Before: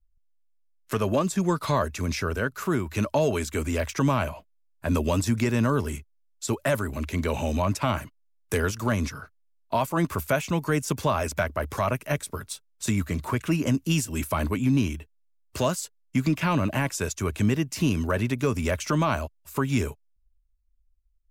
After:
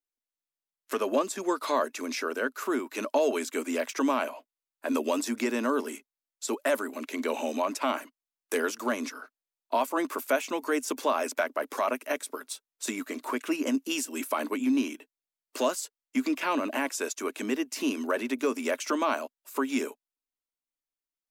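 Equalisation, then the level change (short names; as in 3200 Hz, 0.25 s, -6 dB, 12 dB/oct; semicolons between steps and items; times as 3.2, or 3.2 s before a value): elliptic high-pass 250 Hz, stop band 40 dB; -1.0 dB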